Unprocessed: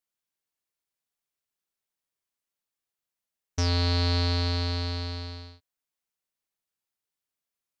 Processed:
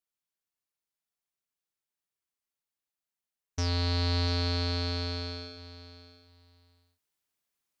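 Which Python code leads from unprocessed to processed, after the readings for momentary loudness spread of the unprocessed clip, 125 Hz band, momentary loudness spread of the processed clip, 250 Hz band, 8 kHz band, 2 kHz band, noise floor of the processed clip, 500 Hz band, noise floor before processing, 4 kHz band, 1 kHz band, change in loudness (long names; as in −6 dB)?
14 LU, −3.5 dB, 17 LU, −2.5 dB, can't be measured, −2.0 dB, below −85 dBFS, −1.5 dB, below −85 dBFS, −2.0 dB, −3.0 dB, −3.0 dB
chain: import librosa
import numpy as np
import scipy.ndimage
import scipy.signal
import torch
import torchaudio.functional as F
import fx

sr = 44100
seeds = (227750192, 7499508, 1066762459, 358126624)

y = fx.notch(x, sr, hz=530.0, q=13.0)
y = fx.rider(y, sr, range_db=10, speed_s=2.0)
y = fx.echo_feedback(y, sr, ms=694, feedback_pct=19, wet_db=-14.5)
y = F.gain(torch.from_numpy(y), -2.5).numpy()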